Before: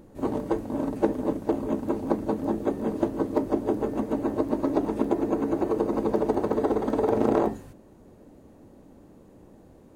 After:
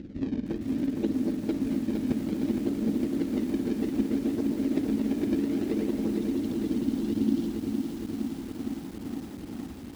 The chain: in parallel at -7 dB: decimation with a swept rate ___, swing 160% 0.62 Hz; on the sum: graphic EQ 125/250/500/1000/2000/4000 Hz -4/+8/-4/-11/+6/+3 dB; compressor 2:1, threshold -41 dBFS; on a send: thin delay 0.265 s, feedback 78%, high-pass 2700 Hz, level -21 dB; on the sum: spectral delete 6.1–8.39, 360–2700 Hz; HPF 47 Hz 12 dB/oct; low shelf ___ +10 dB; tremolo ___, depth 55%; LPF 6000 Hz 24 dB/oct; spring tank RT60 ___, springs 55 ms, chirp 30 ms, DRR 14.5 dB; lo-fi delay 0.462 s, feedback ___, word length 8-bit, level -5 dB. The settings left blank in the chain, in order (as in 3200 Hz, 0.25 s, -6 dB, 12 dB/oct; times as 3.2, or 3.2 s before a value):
37×, 410 Hz, 18 Hz, 2.1 s, 80%